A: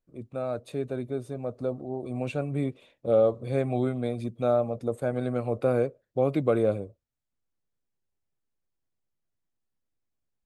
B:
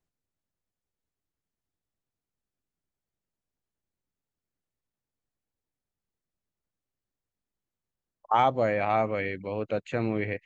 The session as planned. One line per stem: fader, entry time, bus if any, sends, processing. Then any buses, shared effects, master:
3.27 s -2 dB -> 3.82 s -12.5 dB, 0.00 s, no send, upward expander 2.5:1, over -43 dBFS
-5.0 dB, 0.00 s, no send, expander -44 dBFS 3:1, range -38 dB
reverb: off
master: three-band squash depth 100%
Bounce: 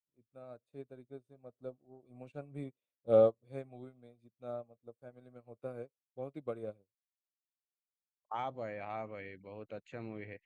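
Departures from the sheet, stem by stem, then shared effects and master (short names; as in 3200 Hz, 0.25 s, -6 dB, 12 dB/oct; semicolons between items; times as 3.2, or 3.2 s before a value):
stem B -5.0 dB -> -16.0 dB; master: missing three-band squash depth 100%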